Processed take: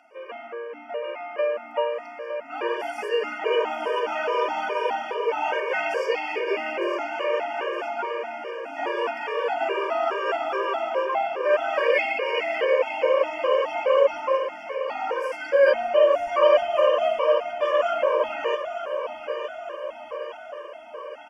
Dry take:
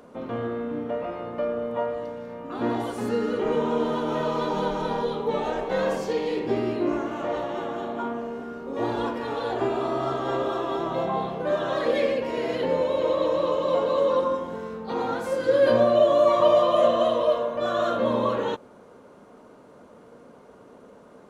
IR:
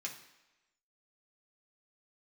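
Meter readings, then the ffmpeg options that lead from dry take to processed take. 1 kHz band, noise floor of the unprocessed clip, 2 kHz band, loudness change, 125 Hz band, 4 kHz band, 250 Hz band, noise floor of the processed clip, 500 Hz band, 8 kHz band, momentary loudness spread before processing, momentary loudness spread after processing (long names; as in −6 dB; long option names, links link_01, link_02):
+2.0 dB, −50 dBFS, +8.0 dB, +0.5 dB, below −25 dB, +2.5 dB, −11.5 dB, −41 dBFS, +0.5 dB, can't be measured, 12 LU, 14 LU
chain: -af "highpass=frequency=460:width=0.5412,highpass=frequency=460:width=1.3066,acontrast=21,asuperstop=centerf=3900:order=8:qfactor=3.2,highshelf=frequency=3500:gain=-9,aecho=1:1:910|1820|2730|3640|4550|5460|6370:0.335|0.194|0.113|0.0654|0.0379|0.022|0.0128,dynaudnorm=framelen=120:gausssize=21:maxgain=5dB,superequalizer=11b=2:12b=3.98:13b=1.41:14b=1.78,afftfilt=real='re*gt(sin(2*PI*2.4*pts/sr)*(1-2*mod(floor(b*sr/1024/310),2)),0)':imag='im*gt(sin(2*PI*2.4*pts/sr)*(1-2*mod(floor(b*sr/1024/310),2)),0)':win_size=1024:overlap=0.75,volume=-3.5dB"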